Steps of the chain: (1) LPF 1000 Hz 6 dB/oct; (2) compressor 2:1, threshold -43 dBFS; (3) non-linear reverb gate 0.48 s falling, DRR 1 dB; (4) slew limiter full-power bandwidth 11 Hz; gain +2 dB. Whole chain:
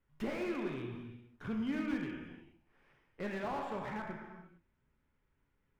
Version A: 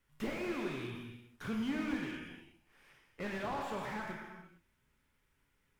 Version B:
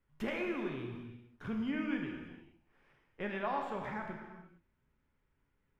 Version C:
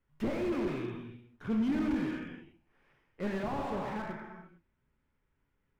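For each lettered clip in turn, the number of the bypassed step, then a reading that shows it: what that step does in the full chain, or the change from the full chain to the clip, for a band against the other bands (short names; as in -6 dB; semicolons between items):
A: 1, 4 kHz band +5.0 dB; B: 4, distortion -9 dB; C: 2, mean gain reduction 5.0 dB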